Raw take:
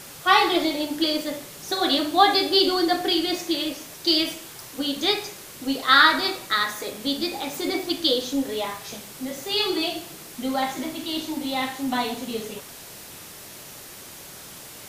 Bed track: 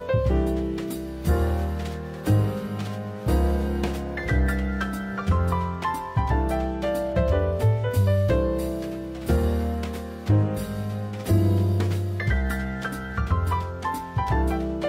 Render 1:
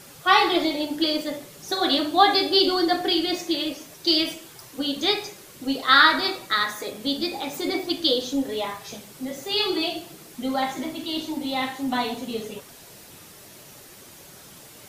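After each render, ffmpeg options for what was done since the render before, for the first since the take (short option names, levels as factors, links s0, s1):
-af "afftdn=nr=6:nf=-42"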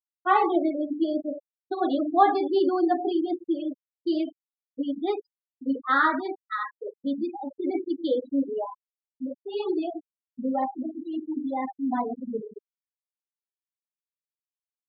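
-af "afftfilt=real='re*gte(hypot(re,im),0.141)':imag='im*gte(hypot(re,im),0.141)':win_size=1024:overlap=0.75,lowpass=1100"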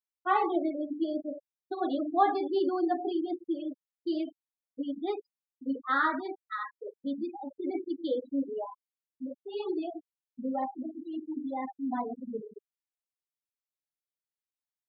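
-af "volume=0.531"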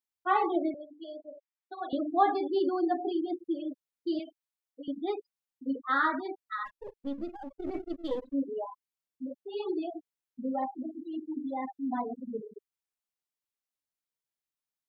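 -filter_complex "[0:a]asettb=1/sr,asplit=3[s0][s1][s2];[s0]atrim=end=0.744[s3];[s1]atrim=start=0.74:end=1.93,asetpts=PTS-STARTPTS,afade=t=in:d=0.004:c=qsin,afade=t=out:st=1.186:d=0.004:c=qsin,highpass=790,lowpass=3500[s4];[s2]atrim=start=1.926[s5];[s3][s4]acrossfade=d=0.004:c1=hsin:c2=qsin[s6];[s6][s5]acrossfade=d=0.004:c1=qsin:c2=hsin,asettb=1/sr,asplit=3[s7][s8][s9];[s7]atrim=end=4.194[s10];[s8]atrim=start=4.19:end=4.88,asetpts=PTS-STARTPTS,afade=t=in:d=0.004:c=qsin,afade=t=out:st=0.686:d=0.004:c=qsin,highpass=520[s11];[s9]atrim=start=4.876[s12];[s10][s11]acrossfade=d=0.004:c1=hsin:c2=qsin[s13];[s13][s12]acrossfade=d=0.004:c1=qsin:c2=hsin,asplit=3[s14][s15][s16];[s14]afade=t=out:st=6.65:d=0.02[s17];[s15]aeval=exprs='if(lt(val(0),0),0.447*val(0),val(0))':c=same,afade=t=in:st=6.65:d=0.02,afade=t=out:st=8.32:d=0.02[s18];[s16]afade=t=in:st=8.32:d=0.02[s19];[s17][s18][s19]amix=inputs=3:normalize=0"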